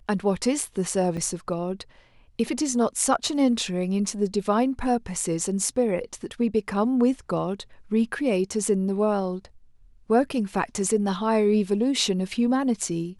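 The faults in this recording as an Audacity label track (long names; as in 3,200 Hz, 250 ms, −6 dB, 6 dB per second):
1.170000	1.170000	drop-out 4.6 ms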